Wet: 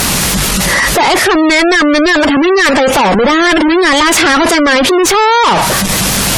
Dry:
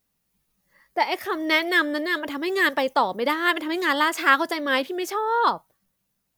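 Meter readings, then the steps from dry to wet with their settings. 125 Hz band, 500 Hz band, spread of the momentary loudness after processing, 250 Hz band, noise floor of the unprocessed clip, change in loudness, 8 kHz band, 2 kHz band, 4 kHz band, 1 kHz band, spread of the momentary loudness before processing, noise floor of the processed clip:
no reading, +16.0 dB, 3 LU, +18.0 dB, -76 dBFS, +14.0 dB, +28.5 dB, +12.5 dB, +17.0 dB, +13.0 dB, 7 LU, -13 dBFS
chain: one-bit delta coder 64 kbps, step -31 dBFS; fuzz box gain 38 dB, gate -45 dBFS; spectral gate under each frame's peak -25 dB strong; trim +6 dB

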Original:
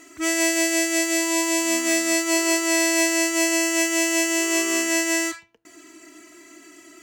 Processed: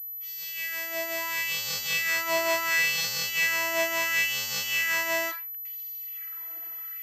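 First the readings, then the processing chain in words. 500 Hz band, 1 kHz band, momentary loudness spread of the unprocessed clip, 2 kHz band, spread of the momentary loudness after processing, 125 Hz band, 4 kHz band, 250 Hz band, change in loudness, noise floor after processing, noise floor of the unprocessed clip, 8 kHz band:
-8.5 dB, -3.0 dB, 2 LU, -2.5 dB, 11 LU, no reading, -3.5 dB, -23.5 dB, -6.5 dB, -38 dBFS, -50 dBFS, -12.5 dB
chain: fade-in on the opening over 1.71 s; LFO high-pass sine 0.72 Hz 740–4100 Hz; class-D stage that switches slowly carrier 12 kHz; trim -4 dB

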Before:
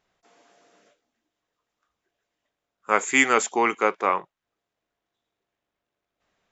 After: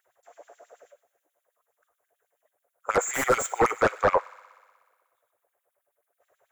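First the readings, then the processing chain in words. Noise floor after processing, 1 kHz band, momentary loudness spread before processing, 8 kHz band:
-81 dBFS, -2.0 dB, 7 LU, no reading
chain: LFO high-pass sine 9.3 Hz 490–3800 Hz; FFT filter 120 Hz 0 dB, 180 Hz -27 dB, 540 Hz -15 dB, 1.1 kHz -28 dB, 2.1 kHz -20 dB, 3.2 kHz -19 dB, 4.9 kHz -23 dB, 10 kHz +3 dB; sine folder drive 17 dB, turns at -19 dBFS; resonant high shelf 1.9 kHz -12 dB, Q 1.5; feedback echo behind a high-pass 61 ms, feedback 78%, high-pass 1.5 kHz, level -18 dB; trim +4.5 dB

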